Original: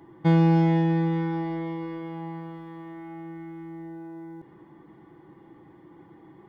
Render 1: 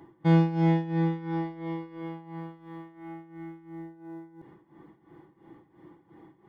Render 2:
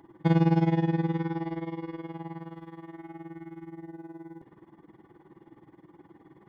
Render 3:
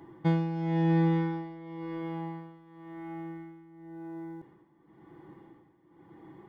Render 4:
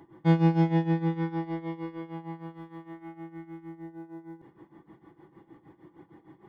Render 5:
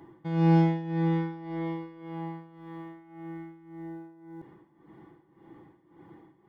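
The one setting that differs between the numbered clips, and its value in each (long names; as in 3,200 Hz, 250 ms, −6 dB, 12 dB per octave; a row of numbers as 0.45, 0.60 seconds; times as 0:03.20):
amplitude tremolo, speed: 2.9, 19, 0.95, 6.5, 1.8 Hertz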